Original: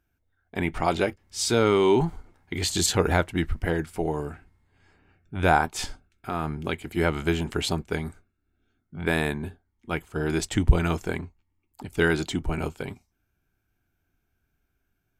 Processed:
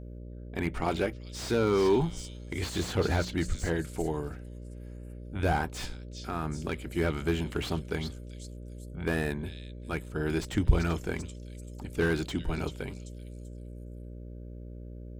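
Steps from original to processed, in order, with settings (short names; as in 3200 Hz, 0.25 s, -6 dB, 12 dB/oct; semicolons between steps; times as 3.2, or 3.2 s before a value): bell 770 Hz -3 dB 0.82 oct; notches 60/120/180 Hz; buzz 60 Hz, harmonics 10, -39 dBFS -6 dB/oct; on a send: delay with a stepping band-pass 0.387 s, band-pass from 4400 Hz, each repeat 0.7 oct, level -8.5 dB; on the sum: slew limiter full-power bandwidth 91 Hz; gain -3.5 dB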